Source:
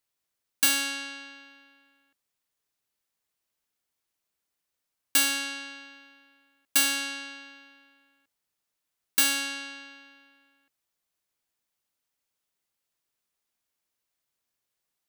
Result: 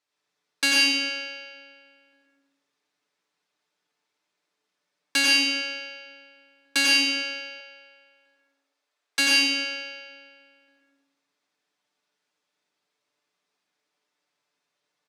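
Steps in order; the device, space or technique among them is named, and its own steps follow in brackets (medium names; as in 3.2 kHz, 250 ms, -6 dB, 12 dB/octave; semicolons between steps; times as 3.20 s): supermarket ceiling speaker (band-pass 240–5400 Hz; reverberation RT60 1.0 s, pre-delay 83 ms, DRR -4 dB); band-stop 2.9 kHz, Q 22; 7.60–9.19 s: Chebyshev high-pass 520 Hz, order 2; comb 6.8 ms, depth 57%; trim +3 dB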